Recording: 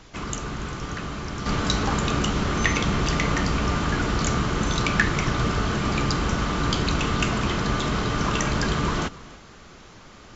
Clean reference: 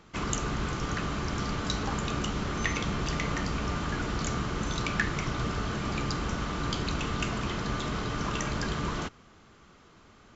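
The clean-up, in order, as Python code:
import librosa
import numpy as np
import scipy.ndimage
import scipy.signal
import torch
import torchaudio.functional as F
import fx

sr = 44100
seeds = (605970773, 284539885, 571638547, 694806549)

y = fx.noise_reduce(x, sr, print_start_s=9.76, print_end_s=10.26, reduce_db=10.0)
y = fx.fix_echo_inverse(y, sr, delay_ms=285, level_db=-20.0)
y = fx.fix_level(y, sr, at_s=1.46, step_db=-7.5)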